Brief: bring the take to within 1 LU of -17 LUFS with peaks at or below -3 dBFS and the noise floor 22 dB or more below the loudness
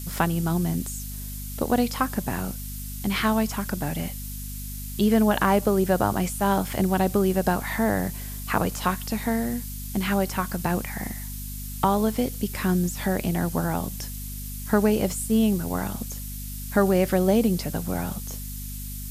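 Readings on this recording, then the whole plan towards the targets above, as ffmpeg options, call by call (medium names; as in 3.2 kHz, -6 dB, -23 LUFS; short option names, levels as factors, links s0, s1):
hum 50 Hz; highest harmonic 250 Hz; hum level -33 dBFS; noise floor -34 dBFS; noise floor target -48 dBFS; loudness -25.5 LUFS; peak level -8.0 dBFS; loudness target -17.0 LUFS
-> -af "bandreject=f=50:t=h:w=4,bandreject=f=100:t=h:w=4,bandreject=f=150:t=h:w=4,bandreject=f=200:t=h:w=4,bandreject=f=250:t=h:w=4"
-af "afftdn=nr=14:nf=-34"
-af "volume=2.66,alimiter=limit=0.708:level=0:latency=1"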